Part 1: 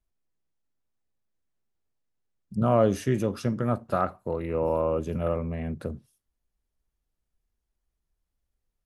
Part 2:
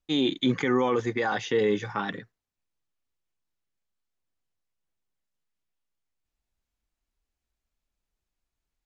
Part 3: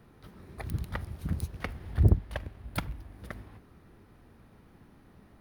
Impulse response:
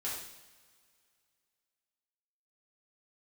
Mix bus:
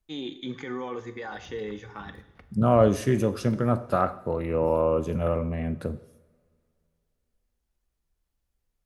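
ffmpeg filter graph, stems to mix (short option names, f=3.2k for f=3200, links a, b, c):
-filter_complex "[0:a]volume=1dB,asplit=2[a][b];[b]volume=-12.5dB[c];[1:a]volume=-12dB,asplit=2[d][e];[e]volume=-9.5dB[f];[2:a]highshelf=f=7.1k:g=-11,adelay=750,volume=-17.5dB,asplit=2[g][h];[h]volume=-16.5dB[i];[3:a]atrim=start_sample=2205[j];[c][f][i]amix=inputs=3:normalize=0[k];[k][j]afir=irnorm=-1:irlink=0[l];[a][d][g][l]amix=inputs=4:normalize=0"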